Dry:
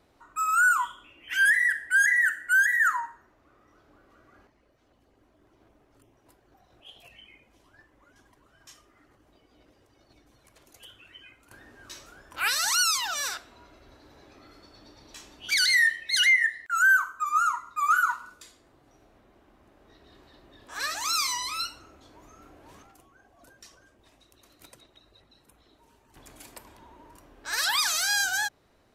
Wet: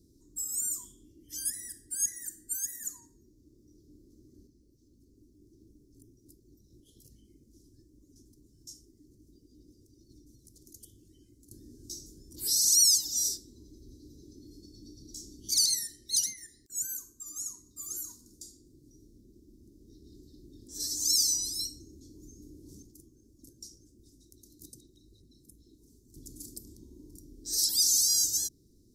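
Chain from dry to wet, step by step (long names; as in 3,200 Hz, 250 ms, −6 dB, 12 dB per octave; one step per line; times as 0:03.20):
elliptic band-stop filter 340–5,300 Hz, stop band 40 dB
level +5.5 dB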